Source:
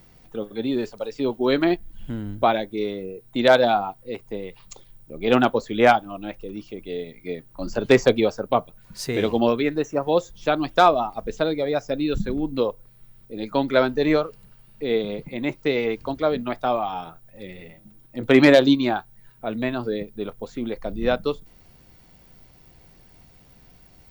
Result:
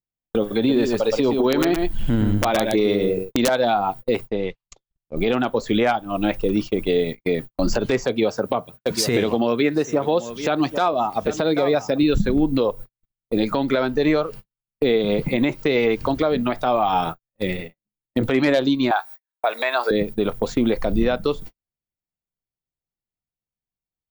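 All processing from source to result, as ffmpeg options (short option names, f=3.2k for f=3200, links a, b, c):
-filter_complex "[0:a]asettb=1/sr,asplit=3[a][b][c];[a]atrim=end=0.574[d];[b]atrim=start=0.57:end=3.49,asetpts=PTS-STARTPTS,afade=t=in:d=0.004:c=qsin,afade=t=out:st=2.916:d=0.004:c=qsin,acompressor=threshold=-21dB:ratio=16:attack=3.2:release=140:knee=1:detection=peak,aeval=exprs='(mod(6.68*val(0)+1,2)-1)/6.68':c=same,aecho=1:1:118:0.422,atrim=end_sample=128772[e];[c]atrim=start=3.486[f];[d][e]acrossfade=d=0.004:c1=hsin:c2=qsin[g];[g][f]acrossfade=d=0.004:c1=qsin:c2=hsin,asettb=1/sr,asplit=3[h][i][j];[h]atrim=end=4.284[k];[i]atrim=start=4.28:end=5.17,asetpts=PTS-STARTPTS,afade=t=in:d=0.004:c=qsin,afade=t=out:st=0.886:d=0.004:c=qsin,lowpass=f=6.5k:w=0.5412,lowpass=f=6.5k:w=1.3066,acompressor=threshold=-36dB:ratio=2.5:attack=3.2:release=140:knee=1:detection=peak[l];[j]atrim=start=5.166[m];[k][l]acrossfade=d=0.004:c1=hsin:c2=qsin[n];[n][m]acrossfade=d=0.004:c1=qsin:c2=hsin,asettb=1/sr,asplit=3[o][p][q];[o]atrim=end=8.064[r];[p]atrim=start=8.06:end=12.03,asetpts=PTS-STARTPTS,afade=t=in:d=0.004:c=qsin,afade=t=out:st=3.966:d=0.004:c=qsin,highpass=92,aecho=1:1:787:0.106,atrim=end_sample=175077[s];[q]atrim=start=12.026[t];[r][s]acrossfade=d=0.004:c1=hsin:c2=qsin[u];[u][t]acrossfade=d=0.004:c1=qsin:c2=hsin,asettb=1/sr,asplit=3[v][w][x];[v]atrim=end=18.914[y];[w]atrim=start=18.91:end=19.91,asetpts=PTS-STARTPTS,afade=t=in:d=0.004:c=qsin,afade=t=out:st=0.996:d=0.004:c=qsin,highpass=f=620:w=0.5412,highpass=f=620:w=1.3066,bandreject=f=3k:w=7.2,acontrast=58[z];[x]atrim=start=19.906[aa];[y][z]acrossfade=d=0.004:c1=hsin:c2=qsin[ab];[ab][aa]acrossfade=d=0.004:c1=qsin:c2=hsin,agate=range=-58dB:threshold=-39dB:ratio=16:detection=peak,acompressor=threshold=-28dB:ratio=12,alimiter=level_in=23dB:limit=-1dB:release=50:level=0:latency=1,volume=-8.5dB"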